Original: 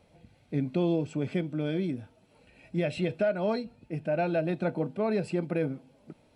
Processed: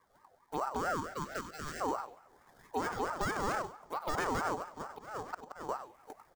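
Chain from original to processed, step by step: minimum comb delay 0.43 ms; sample-and-hold 13×; envelope phaser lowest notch 300 Hz, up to 2700 Hz, full sweep at -28 dBFS; 0.8–1.8 HPF 230 Hz -> 640 Hz 24 dB/oct; 4.45–5.69 auto swell 0.671 s; echo 97 ms -11 dB; on a send at -23 dB: reverb RT60 2.1 s, pre-delay 53 ms; on the sum: vocal rider within 3 dB 2 s; limiter -23.5 dBFS, peak gain reduction 6 dB; ring modulator with a swept carrier 840 Hz, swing 30%, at 4.5 Hz; gain +1 dB

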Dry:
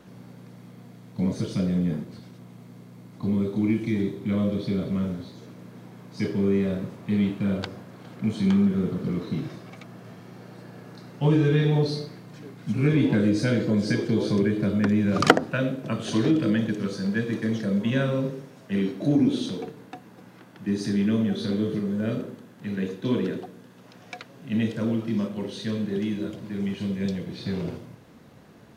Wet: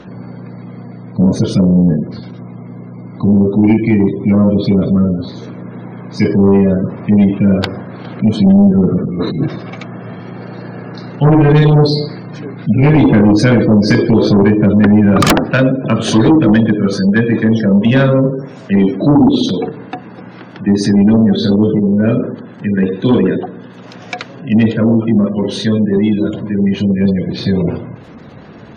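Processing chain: spectral gate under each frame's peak -30 dB strong; sine folder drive 15 dB, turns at -1 dBFS; 9.04–9.46 negative-ratio compressor -12 dBFS, ratio -0.5; gain -3 dB

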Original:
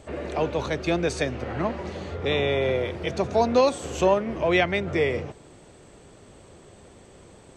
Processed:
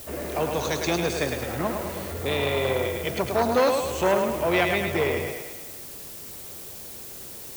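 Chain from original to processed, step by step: 0.54–1.02 bell 6400 Hz +13 dB 0.99 oct; added noise blue -42 dBFS; on a send: thinning echo 0.106 s, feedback 58%, high-pass 320 Hz, level -4.5 dB; on the sum: core saturation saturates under 930 Hz

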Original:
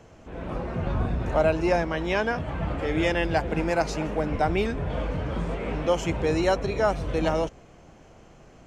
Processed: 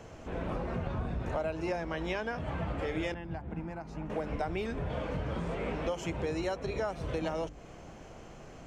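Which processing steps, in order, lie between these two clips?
notches 50/100/150/200/250/300/350 Hz; compressor 6:1, threshold -34 dBFS, peak gain reduction 15.5 dB; 3.14–4.1 EQ curve 230 Hz 0 dB, 510 Hz -13 dB, 850 Hz -5 dB, 5000 Hz -18 dB; gain +2.5 dB

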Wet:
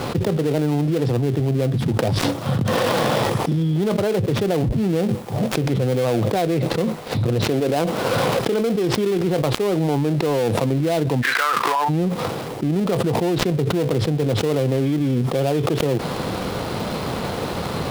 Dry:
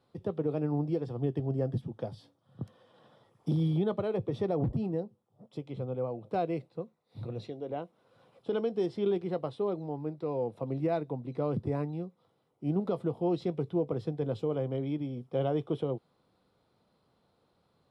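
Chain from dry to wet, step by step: switching dead time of 0.19 ms; 11.21–11.88 resonant high-pass 1800 Hz -> 840 Hz, resonance Q 10; fast leveller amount 100%; gain +6.5 dB

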